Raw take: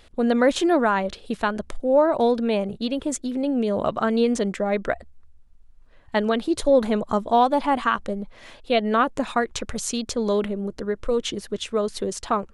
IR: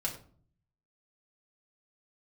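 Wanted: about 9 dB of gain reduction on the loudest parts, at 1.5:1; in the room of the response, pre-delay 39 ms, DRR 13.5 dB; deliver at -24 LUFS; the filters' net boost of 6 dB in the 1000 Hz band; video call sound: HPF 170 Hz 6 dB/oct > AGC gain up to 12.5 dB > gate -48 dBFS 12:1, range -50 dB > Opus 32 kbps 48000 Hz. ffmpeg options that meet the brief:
-filter_complex "[0:a]equalizer=f=1k:t=o:g=8,acompressor=threshold=-35dB:ratio=1.5,asplit=2[a][b];[1:a]atrim=start_sample=2205,adelay=39[c];[b][c]afir=irnorm=-1:irlink=0,volume=-16.5dB[d];[a][d]amix=inputs=2:normalize=0,highpass=f=170:p=1,dynaudnorm=m=12.5dB,agate=range=-50dB:threshold=-48dB:ratio=12,volume=4.5dB" -ar 48000 -c:a libopus -b:a 32k

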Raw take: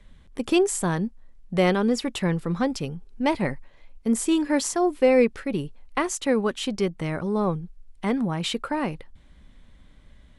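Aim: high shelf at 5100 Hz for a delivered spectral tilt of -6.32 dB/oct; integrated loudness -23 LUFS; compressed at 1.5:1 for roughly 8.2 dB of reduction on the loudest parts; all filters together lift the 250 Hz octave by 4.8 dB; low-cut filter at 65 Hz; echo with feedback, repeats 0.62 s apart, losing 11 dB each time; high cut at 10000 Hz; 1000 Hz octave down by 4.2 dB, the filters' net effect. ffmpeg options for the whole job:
-af "highpass=65,lowpass=10k,equalizer=f=250:t=o:g=6.5,equalizer=f=1k:t=o:g=-6,highshelf=f=5.1k:g=-5.5,acompressor=threshold=-35dB:ratio=1.5,aecho=1:1:620|1240|1860:0.282|0.0789|0.0221,volume=6dB"

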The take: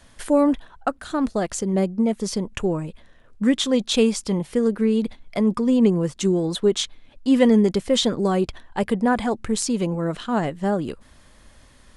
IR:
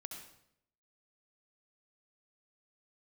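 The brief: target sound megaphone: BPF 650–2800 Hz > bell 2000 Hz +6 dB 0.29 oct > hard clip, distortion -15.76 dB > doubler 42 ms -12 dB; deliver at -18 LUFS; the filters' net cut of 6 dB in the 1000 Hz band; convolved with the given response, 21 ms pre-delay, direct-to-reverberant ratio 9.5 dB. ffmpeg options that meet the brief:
-filter_complex "[0:a]equalizer=f=1k:t=o:g=-6.5,asplit=2[a][b];[1:a]atrim=start_sample=2205,adelay=21[c];[b][c]afir=irnorm=-1:irlink=0,volume=-6dB[d];[a][d]amix=inputs=2:normalize=0,highpass=650,lowpass=2.8k,equalizer=f=2k:t=o:w=0.29:g=6,asoftclip=type=hard:threshold=-20.5dB,asplit=2[e][f];[f]adelay=42,volume=-12dB[g];[e][g]amix=inputs=2:normalize=0,volume=14dB"

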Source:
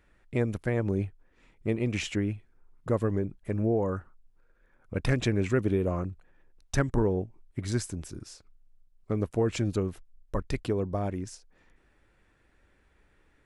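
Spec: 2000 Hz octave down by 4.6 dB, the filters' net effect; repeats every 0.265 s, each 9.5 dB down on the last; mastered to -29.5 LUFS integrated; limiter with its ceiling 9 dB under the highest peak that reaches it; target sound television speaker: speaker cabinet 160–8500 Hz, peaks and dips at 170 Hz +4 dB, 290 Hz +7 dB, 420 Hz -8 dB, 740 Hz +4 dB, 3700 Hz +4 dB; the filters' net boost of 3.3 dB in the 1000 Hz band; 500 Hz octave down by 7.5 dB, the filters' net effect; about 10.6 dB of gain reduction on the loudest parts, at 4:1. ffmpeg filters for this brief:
-af "equalizer=f=500:t=o:g=-8,equalizer=f=1k:t=o:g=7.5,equalizer=f=2k:t=o:g=-8.5,acompressor=threshold=-35dB:ratio=4,alimiter=level_in=7dB:limit=-24dB:level=0:latency=1,volume=-7dB,highpass=f=160:w=0.5412,highpass=f=160:w=1.3066,equalizer=f=170:t=q:w=4:g=4,equalizer=f=290:t=q:w=4:g=7,equalizer=f=420:t=q:w=4:g=-8,equalizer=f=740:t=q:w=4:g=4,equalizer=f=3.7k:t=q:w=4:g=4,lowpass=f=8.5k:w=0.5412,lowpass=f=8.5k:w=1.3066,aecho=1:1:265|530|795|1060:0.335|0.111|0.0365|0.012,volume=14dB"

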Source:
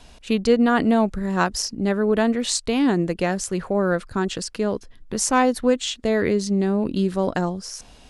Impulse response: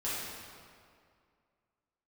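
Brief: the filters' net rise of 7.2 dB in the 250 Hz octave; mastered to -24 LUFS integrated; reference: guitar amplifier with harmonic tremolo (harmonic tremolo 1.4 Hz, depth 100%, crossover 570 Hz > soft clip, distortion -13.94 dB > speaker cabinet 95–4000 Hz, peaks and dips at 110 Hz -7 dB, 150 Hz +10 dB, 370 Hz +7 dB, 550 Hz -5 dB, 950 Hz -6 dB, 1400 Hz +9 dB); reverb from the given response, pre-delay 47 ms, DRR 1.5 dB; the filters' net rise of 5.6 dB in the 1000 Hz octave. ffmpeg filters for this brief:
-filter_complex "[0:a]equalizer=f=250:t=o:g=6.5,equalizer=f=1k:t=o:g=8,asplit=2[a][b];[1:a]atrim=start_sample=2205,adelay=47[c];[b][c]afir=irnorm=-1:irlink=0,volume=-7.5dB[d];[a][d]amix=inputs=2:normalize=0,acrossover=split=570[e][f];[e]aeval=exprs='val(0)*(1-1/2+1/2*cos(2*PI*1.4*n/s))':c=same[g];[f]aeval=exprs='val(0)*(1-1/2-1/2*cos(2*PI*1.4*n/s))':c=same[h];[g][h]amix=inputs=2:normalize=0,asoftclip=threshold=-11.5dB,highpass=95,equalizer=f=110:t=q:w=4:g=-7,equalizer=f=150:t=q:w=4:g=10,equalizer=f=370:t=q:w=4:g=7,equalizer=f=550:t=q:w=4:g=-5,equalizer=f=950:t=q:w=4:g=-6,equalizer=f=1.4k:t=q:w=4:g=9,lowpass=f=4k:w=0.5412,lowpass=f=4k:w=1.3066,volume=-4dB"

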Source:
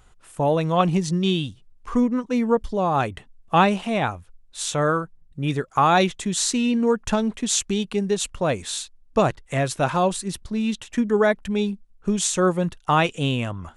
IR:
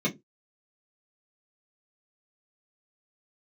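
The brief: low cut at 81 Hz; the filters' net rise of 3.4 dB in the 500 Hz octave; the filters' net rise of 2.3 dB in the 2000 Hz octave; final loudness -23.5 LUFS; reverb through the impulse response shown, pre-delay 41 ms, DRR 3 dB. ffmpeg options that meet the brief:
-filter_complex "[0:a]highpass=81,equalizer=f=500:t=o:g=4,equalizer=f=2k:t=o:g=3,asplit=2[a][b];[1:a]atrim=start_sample=2205,adelay=41[c];[b][c]afir=irnorm=-1:irlink=0,volume=-12dB[d];[a][d]amix=inputs=2:normalize=0,volume=-8dB"

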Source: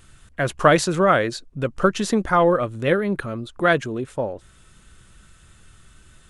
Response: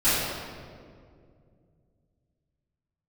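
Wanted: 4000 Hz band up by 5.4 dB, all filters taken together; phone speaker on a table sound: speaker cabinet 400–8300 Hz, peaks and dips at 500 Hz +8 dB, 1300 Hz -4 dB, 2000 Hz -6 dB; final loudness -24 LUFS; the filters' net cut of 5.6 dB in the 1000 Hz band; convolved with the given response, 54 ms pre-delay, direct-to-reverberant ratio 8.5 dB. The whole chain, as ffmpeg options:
-filter_complex "[0:a]equalizer=f=1k:t=o:g=-6.5,equalizer=f=4k:t=o:g=7.5,asplit=2[a][b];[1:a]atrim=start_sample=2205,adelay=54[c];[b][c]afir=irnorm=-1:irlink=0,volume=-25.5dB[d];[a][d]amix=inputs=2:normalize=0,highpass=f=400:w=0.5412,highpass=f=400:w=1.3066,equalizer=f=500:t=q:w=4:g=8,equalizer=f=1.3k:t=q:w=4:g=-4,equalizer=f=2k:t=q:w=4:g=-6,lowpass=f=8.3k:w=0.5412,lowpass=f=8.3k:w=1.3066,volume=-3.5dB"

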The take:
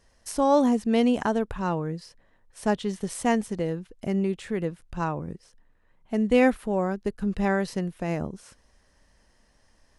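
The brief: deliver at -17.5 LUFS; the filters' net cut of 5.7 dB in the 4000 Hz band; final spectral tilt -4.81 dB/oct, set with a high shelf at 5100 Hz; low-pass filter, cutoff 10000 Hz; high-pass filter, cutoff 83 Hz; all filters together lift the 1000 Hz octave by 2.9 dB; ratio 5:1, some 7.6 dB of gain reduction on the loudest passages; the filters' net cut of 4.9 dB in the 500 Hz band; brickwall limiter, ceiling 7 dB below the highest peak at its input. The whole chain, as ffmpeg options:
-af "highpass=83,lowpass=10k,equalizer=f=500:t=o:g=-7.5,equalizer=f=1k:t=o:g=7,equalizer=f=4k:t=o:g=-5.5,highshelf=f=5.1k:g=-7.5,acompressor=threshold=-25dB:ratio=5,volume=15.5dB,alimiter=limit=-6.5dB:level=0:latency=1"

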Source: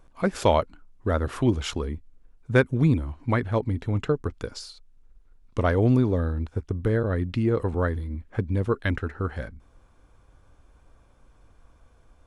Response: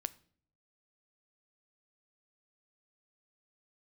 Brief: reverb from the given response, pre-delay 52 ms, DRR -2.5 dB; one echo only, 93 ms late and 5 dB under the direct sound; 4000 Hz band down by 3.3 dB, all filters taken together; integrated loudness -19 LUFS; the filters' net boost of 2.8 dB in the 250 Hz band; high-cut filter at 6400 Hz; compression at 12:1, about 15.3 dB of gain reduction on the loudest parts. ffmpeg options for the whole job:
-filter_complex "[0:a]lowpass=6.4k,equalizer=f=250:t=o:g=3.5,equalizer=f=4k:t=o:g=-4,acompressor=threshold=-29dB:ratio=12,aecho=1:1:93:0.562,asplit=2[a][b];[1:a]atrim=start_sample=2205,adelay=52[c];[b][c]afir=irnorm=-1:irlink=0,volume=3.5dB[d];[a][d]amix=inputs=2:normalize=0,volume=11dB"

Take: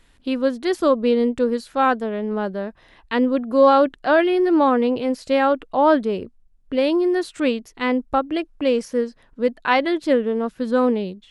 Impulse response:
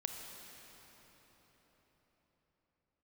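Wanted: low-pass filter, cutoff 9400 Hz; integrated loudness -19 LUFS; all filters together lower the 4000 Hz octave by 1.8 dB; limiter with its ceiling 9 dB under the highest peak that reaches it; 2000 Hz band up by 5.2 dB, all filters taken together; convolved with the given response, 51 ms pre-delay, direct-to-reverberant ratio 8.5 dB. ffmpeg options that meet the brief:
-filter_complex "[0:a]lowpass=9.4k,equalizer=f=2k:t=o:g=8,equalizer=f=4k:t=o:g=-6.5,alimiter=limit=-10dB:level=0:latency=1,asplit=2[a][b];[1:a]atrim=start_sample=2205,adelay=51[c];[b][c]afir=irnorm=-1:irlink=0,volume=-8.5dB[d];[a][d]amix=inputs=2:normalize=0,volume=1.5dB"

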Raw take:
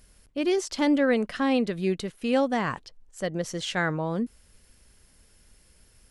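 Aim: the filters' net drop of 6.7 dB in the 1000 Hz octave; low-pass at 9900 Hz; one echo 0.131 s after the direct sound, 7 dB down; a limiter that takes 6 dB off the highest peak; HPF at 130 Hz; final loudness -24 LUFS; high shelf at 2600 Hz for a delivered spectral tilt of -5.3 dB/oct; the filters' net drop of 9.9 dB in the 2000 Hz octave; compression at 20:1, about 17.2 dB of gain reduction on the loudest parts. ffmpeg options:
-af "highpass=130,lowpass=9.9k,equalizer=f=1k:t=o:g=-6.5,equalizer=f=2k:t=o:g=-8,highshelf=f=2.6k:g=-6,acompressor=threshold=-37dB:ratio=20,alimiter=level_in=10.5dB:limit=-24dB:level=0:latency=1,volume=-10.5dB,aecho=1:1:131:0.447,volume=19.5dB"

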